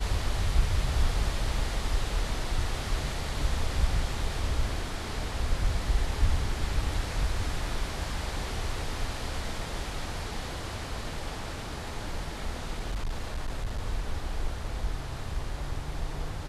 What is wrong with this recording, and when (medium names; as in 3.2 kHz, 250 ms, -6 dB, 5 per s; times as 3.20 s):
12.78–13.80 s: clipped -27 dBFS